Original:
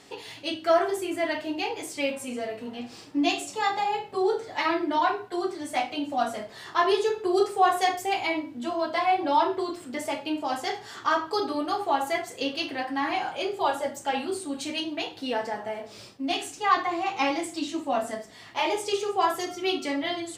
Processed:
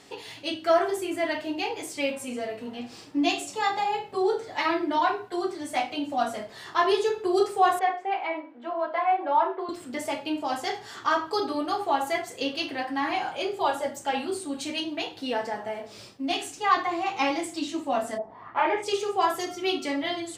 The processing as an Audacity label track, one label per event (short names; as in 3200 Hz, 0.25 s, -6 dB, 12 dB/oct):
7.790000	9.690000	Butterworth band-pass 920 Hz, Q 0.58
18.170000	18.820000	synth low-pass 740 Hz -> 2000 Hz, resonance Q 5.2